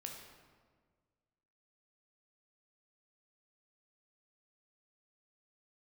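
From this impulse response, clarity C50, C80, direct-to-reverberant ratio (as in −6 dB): 3.5 dB, 5.5 dB, 1.0 dB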